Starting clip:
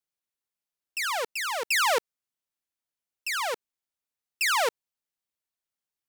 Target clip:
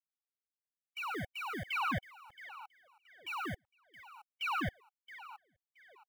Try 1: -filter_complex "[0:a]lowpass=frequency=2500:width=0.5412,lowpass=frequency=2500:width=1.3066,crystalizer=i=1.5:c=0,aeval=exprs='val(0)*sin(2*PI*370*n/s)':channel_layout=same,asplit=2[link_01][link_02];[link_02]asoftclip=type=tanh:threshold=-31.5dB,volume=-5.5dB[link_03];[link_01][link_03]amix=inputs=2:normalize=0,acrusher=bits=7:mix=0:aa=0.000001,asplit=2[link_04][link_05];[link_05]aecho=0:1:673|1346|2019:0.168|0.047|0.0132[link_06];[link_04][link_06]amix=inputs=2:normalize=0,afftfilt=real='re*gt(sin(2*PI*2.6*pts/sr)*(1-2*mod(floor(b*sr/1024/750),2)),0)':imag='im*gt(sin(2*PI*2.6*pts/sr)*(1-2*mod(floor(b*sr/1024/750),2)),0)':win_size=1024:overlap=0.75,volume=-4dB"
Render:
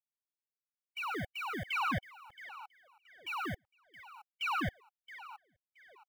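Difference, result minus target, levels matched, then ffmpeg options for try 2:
soft clipping: distortion −5 dB
-filter_complex "[0:a]lowpass=frequency=2500:width=0.5412,lowpass=frequency=2500:width=1.3066,crystalizer=i=1.5:c=0,aeval=exprs='val(0)*sin(2*PI*370*n/s)':channel_layout=same,asplit=2[link_01][link_02];[link_02]asoftclip=type=tanh:threshold=-41.5dB,volume=-5.5dB[link_03];[link_01][link_03]amix=inputs=2:normalize=0,acrusher=bits=7:mix=0:aa=0.000001,asplit=2[link_04][link_05];[link_05]aecho=0:1:673|1346|2019:0.168|0.047|0.0132[link_06];[link_04][link_06]amix=inputs=2:normalize=0,afftfilt=real='re*gt(sin(2*PI*2.6*pts/sr)*(1-2*mod(floor(b*sr/1024/750),2)),0)':imag='im*gt(sin(2*PI*2.6*pts/sr)*(1-2*mod(floor(b*sr/1024/750),2)),0)':win_size=1024:overlap=0.75,volume=-4dB"

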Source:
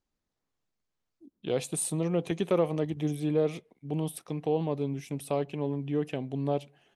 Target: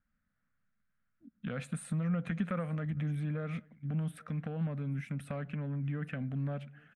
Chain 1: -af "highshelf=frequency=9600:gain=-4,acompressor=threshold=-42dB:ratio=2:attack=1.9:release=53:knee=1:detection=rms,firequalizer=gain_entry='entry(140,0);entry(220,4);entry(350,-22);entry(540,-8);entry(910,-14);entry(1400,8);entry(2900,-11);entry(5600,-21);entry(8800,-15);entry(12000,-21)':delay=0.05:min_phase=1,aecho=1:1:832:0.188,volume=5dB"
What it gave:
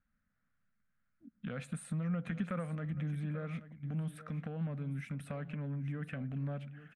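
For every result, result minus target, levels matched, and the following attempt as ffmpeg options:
echo-to-direct +11.5 dB; downward compressor: peak gain reduction +3 dB
-af "highshelf=frequency=9600:gain=-4,acompressor=threshold=-42dB:ratio=2:attack=1.9:release=53:knee=1:detection=rms,firequalizer=gain_entry='entry(140,0);entry(220,4);entry(350,-22);entry(540,-8);entry(910,-14);entry(1400,8);entry(2900,-11);entry(5600,-21);entry(8800,-15);entry(12000,-21)':delay=0.05:min_phase=1,aecho=1:1:832:0.0501,volume=5dB"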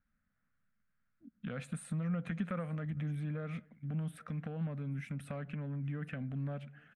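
downward compressor: peak gain reduction +3 dB
-af "highshelf=frequency=9600:gain=-4,acompressor=threshold=-36dB:ratio=2:attack=1.9:release=53:knee=1:detection=rms,firequalizer=gain_entry='entry(140,0);entry(220,4);entry(350,-22);entry(540,-8);entry(910,-14);entry(1400,8);entry(2900,-11);entry(5600,-21);entry(8800,-15);entry(12000,-21)':delay=0.05:min_phase=1,aecho=1:1:832:0.0501,volume=5dB"

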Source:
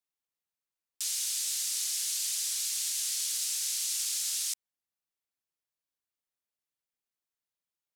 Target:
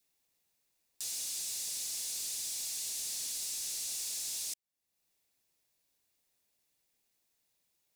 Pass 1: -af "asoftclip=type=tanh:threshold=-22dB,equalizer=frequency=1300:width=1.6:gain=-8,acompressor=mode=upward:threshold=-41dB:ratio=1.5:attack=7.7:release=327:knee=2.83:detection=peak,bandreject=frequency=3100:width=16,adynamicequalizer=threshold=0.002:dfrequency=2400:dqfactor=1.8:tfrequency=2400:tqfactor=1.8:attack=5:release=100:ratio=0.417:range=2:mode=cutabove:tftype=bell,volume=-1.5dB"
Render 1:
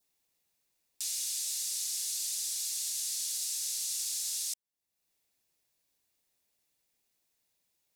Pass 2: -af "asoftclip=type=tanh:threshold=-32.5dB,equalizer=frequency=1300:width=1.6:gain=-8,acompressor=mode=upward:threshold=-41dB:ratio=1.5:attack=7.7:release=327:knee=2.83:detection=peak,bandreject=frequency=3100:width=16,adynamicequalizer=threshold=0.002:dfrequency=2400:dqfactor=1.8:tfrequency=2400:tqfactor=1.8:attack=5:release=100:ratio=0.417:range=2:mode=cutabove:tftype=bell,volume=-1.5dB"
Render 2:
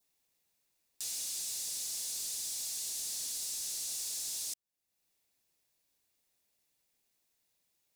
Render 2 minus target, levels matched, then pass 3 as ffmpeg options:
2,000 Hz band −2.5 dB
-af "asoftclip=type=tanh:threshold=-32.5dB,equalizer=frequency=1300:width=1.6:gain=-8,acompressor=mode=upward:threshold=-41dB:ratio=1.5:attack=7.7:release=327:knee=2.83:detection=peak,bandreject=frequency=3100:width=16,adynamicequalizer=threshold=0.002:dfrequency=900:dqfactor=1.8:tfrequency=900:tqfactor=1.8:attack=5:release=100:ratio=0.417:range=2:mode=cutabove:tftype=bell,volume=-1.5dB"

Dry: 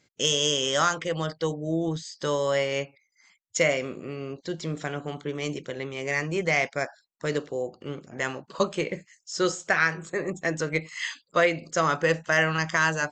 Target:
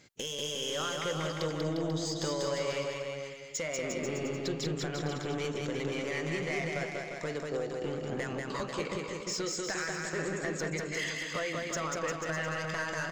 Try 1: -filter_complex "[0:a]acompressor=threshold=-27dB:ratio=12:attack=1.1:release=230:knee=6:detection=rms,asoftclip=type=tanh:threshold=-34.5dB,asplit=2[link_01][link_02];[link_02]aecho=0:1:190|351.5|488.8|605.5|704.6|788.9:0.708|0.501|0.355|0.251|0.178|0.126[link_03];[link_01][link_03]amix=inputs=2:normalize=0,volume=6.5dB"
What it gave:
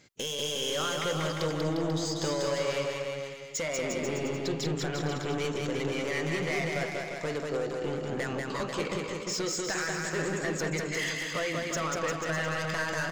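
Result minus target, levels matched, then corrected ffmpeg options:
downward compressor: peak gain reduction −5.5 dB
-filter_complex "[0:a]acompressor=threshold=-33dB:ratio=12:attack=1.1:release=230:knee=6:detection=rms,asoftclip=type=tanh:threshold=-34.5dB,asplit=2[link_01][link_02];[link_02]aecho=0:1:190|351.5|488.8|605.5|704.6|788.9:0.708|0.501|0.355|0.251|0.178|0.126[link_03];[link_01][link_03]amix=inputs=2:normalize=0,volume=6.5dB"

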